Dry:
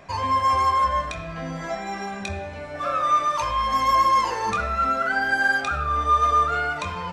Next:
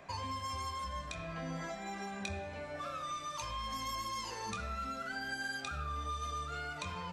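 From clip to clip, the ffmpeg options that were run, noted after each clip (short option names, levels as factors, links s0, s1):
-filter_complex "[0:a]lowshelf=f=110:g=-6,bandreject=f=5500:w=24,acrossover=split=250|3000[s0][s1][s2];[s1]acompressor=threshold=0.02:ratio=10[s3];[s0][s3][s2]amix=inputs=3:normalize=0,volume=0.473"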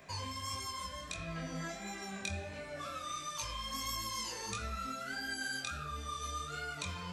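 -af "equalizer=f=860:t=o:w=0.86:g=-5.5,flanger=delay=18:depth=6.1:speed=1.5,highshelf=f=5600:g=10,volume=1.41"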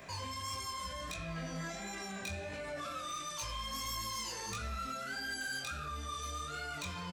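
-filter_complex "[0:a]asplit=2[s0][s1];[s1]adelay=17,volume=0.299[s2];[s0][s2]amix=inputs=2:normalize=0,asoftclip=type=hard:threshold=0.0188,alimiter=level_in=5.96:limit=0.0631:level=0:latency=1:release=24,volume=0.168,volume=1.78"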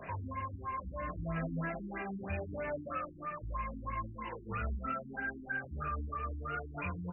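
-af "areverse,acompressor=mode=upward:threshold=0.00316:ratio=2.5,areverse,afftfilt=real='re*lt(b*sr/1024,350*pow(3000/350,0.5+0.5*sin(2*PI*3.1*pts/sr)))':imag='im*lt(b*sr/1024,350*pow(3000/350,0.5+0.5*sin(2*PI*3.1*pts/sr)))':win_size=1024:overlap=0.75,volume=1.78"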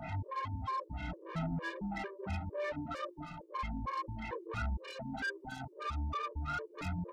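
-af "asoftclip=type=tanh:threshold=0.0106,aeval=exprs='val(0)+0.00112*sin(2*PI*890*n/s)':c=same,afftfilt=real='re*gt(sin(2*PI*2.2*pts/sr)*(1-2*mod(floor(b*sr/1024/310),2)),0)':imag='im*gt(sin(2*PI*2.2*pts/sr)*(1-2*mod(floor(b*sr/1024/310),2)),0)':win_size=1024:overlap=0.75,volume=2.37"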